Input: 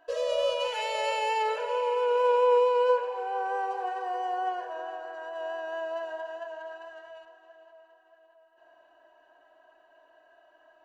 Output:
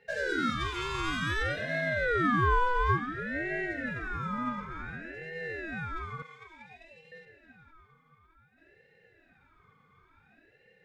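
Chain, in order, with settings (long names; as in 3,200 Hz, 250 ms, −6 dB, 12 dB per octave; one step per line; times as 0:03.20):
0:06.22–0:07.12: inverse Chebyshev high-pass filter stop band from 250 Hz, stop band 70 dB
ring modulator whose carrier an LFO sweeps 820 Hz, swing 40%, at 0.56 Hz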